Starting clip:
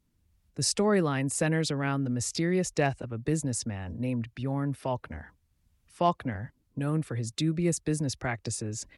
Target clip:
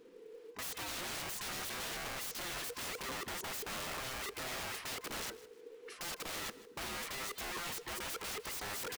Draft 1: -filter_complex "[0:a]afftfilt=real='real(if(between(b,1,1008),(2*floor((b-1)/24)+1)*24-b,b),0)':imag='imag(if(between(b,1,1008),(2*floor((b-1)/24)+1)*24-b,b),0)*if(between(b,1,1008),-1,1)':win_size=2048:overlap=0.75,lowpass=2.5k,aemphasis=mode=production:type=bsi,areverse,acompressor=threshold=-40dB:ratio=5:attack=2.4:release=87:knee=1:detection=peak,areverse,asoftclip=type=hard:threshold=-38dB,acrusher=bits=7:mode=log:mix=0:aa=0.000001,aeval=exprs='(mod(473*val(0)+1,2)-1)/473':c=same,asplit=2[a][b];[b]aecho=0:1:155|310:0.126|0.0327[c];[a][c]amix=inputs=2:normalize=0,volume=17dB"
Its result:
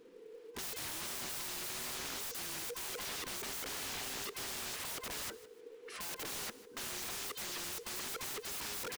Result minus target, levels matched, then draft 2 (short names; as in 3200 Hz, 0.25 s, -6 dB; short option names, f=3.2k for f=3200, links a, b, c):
compressor: peak gain reduction -9 dB
-filter_complex "[0:a]afftfilt=real='real(if(between(b,1,1008),(2*floor((b-1)/24)+1)*24-b,b),0)':imag='imag(if(between(b,1,1008),(2*floor((b-1)/24)+1)*24-b,b),0)*if(between(b,1,1008),-1,1)':win_size=2048:overlap=0.75,lowpass=2.5k,aemphasis=mode=production:type=bsi,areverse,acompressor=threshold=-51.5dB:ratio=5:attack=2.4:release=87:knee=1:detection=peak,areverse,asoftclip=type=hard:threshold=-38dB,acrusher=bits=7:mode=log:mix=0:aa=0.000001,aeval=exprs='(mod(473*val(0)+1,2)-1)/473':c=same,asplit=2[a][b];[b]aecho=0:1:155|310:0.126|0.0327[c];[a][c]amix=inputs=2:normalize=0,volume=17dB"